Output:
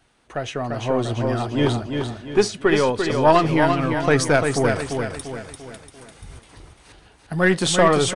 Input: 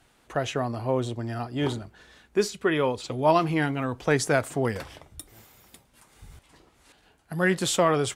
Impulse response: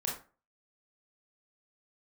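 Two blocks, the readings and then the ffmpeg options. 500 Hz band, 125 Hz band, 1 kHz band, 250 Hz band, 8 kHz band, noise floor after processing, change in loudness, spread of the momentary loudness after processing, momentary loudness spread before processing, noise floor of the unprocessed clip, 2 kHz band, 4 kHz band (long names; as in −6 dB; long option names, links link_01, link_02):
+6.5 dB, +6.0 dB, +6.5 dB, +6.5 dB, +5.0 dB, −53 dBFS, +6.0 dB, 16 LU, 15 LU, −63 dBFS, +6.5 dB, +6.5 dB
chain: -af "aeval=exprs='0.422*(cos(1*acos(clip(val(0)/0.422,-1,1)))-cos(1*PI/2))+0.0376*(cos(4*acos(clip(val(0)/0.422,-1,1)))-cos(4*PI/2))':channel_layout=same,aecho=1:1:344|688|1032|1376|1720:0.531|0.223|0.0936|0.0393|0.0165,aresample=22050,aresample=44100,bandreject=frequency=7300:width=9.1,dynaudnorm=framelen=110:gausssize=17:maxgain=7.5dB"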